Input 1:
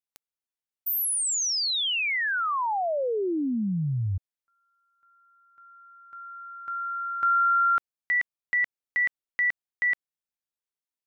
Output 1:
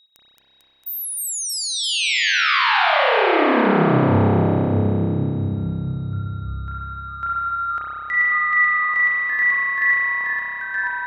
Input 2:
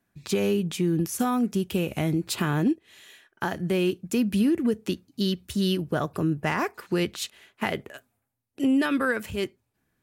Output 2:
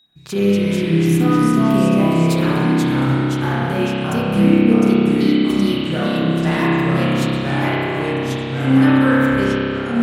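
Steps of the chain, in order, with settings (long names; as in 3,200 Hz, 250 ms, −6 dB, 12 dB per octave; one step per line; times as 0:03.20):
delay with pitch and tempo change per echo 203 ms, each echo −2 semitones, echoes 3
steady tone 3,800 Hz −53 dBFS
spring reverb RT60 3.2 s, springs 30 ms, chirp 35 ms, DRR −8 dB
level −1 dB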